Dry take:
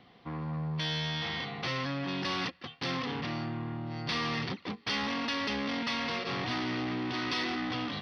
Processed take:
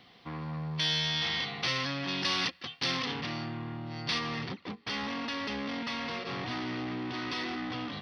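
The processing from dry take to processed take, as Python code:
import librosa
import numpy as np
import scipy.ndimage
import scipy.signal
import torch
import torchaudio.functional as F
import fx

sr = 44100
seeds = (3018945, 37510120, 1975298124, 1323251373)

y = fx.high_shelf(x, sr, hz=2300.0, db=fx.steps((0.0, 11.5), (3.12, 7.0), (4.18, -2.0)))
y = y * 10.0 ** (-2.0 / 20.0)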